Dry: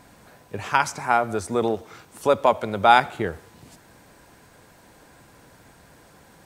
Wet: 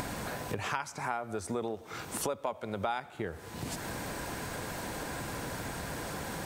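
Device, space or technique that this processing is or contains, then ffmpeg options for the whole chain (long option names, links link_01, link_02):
upward and downward compression: -af "acompressor=mode=upward:threshold=-22dB:ratio=2.5,acompressor=threshold=-30dB:ratio=6,volume=-1.5dB"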